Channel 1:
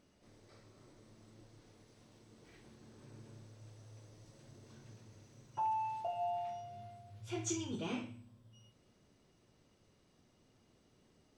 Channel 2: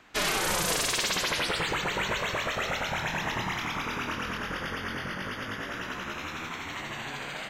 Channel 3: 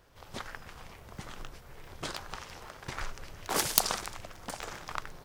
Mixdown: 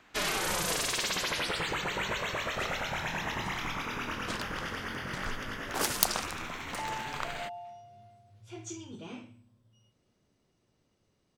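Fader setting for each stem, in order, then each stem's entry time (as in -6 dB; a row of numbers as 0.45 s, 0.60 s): -4.0 dB, -3.5 dB, -1.5 dB; 1.20 s, 0.00 s, 2.25 s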